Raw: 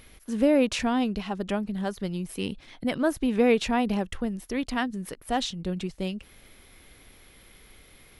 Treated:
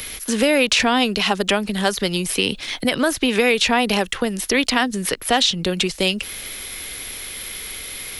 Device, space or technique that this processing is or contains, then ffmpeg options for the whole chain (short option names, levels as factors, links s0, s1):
mastering chain: -filter_complex "[0:a]equalizer=f=450:t=o:w=0.87:g=3.5,acrossover=split=100|260|1100|5200[s0][s1][s2][s3][s4];[s0]acompressor=threshold=0.00355:ratio=4[s5];[s1]acompressor=threshold=0.0126:ratio=4[s6];[s2]acompressor=threshold=0.0447:ratio=4[s7];[s3]acompressor=threshold=0.0178:ratio=4[s8];[s4]acompressor=threshold=0.00224:ratio=4[s9];[s5][s6][s7][s8][s9]amix=inputs=5:normalize=0,acompressor=threshold=0.0251:ratio=1.5,tiltshelf=f=1500:g=-8,alimiter=level_in=15.8:limit=0.891:release=50:level=0:latency=1,volume=0.531"